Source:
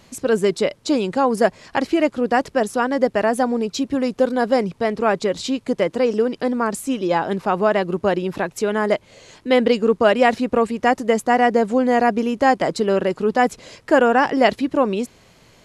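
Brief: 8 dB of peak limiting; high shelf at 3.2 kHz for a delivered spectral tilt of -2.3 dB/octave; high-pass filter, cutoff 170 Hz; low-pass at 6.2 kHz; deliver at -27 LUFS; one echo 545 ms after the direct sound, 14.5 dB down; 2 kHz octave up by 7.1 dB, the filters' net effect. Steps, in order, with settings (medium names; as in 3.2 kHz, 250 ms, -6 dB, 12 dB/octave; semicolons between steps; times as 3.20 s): high-pass 170 Hz; low-pass 6.2 kHz; peaking EQ 2 kHz +7 dB; treble shelf 3.2 kHz +5.5 dB; peak limiter -5.5 dBFS; delay 545 ms -14.5 dB; trim -8 dB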